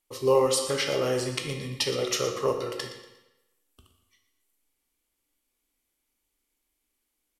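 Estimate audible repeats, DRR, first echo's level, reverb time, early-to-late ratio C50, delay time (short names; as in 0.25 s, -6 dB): 2, 3.5 dB, -13.5 dB, 0.95 s, 6.0 dB, 0.118 s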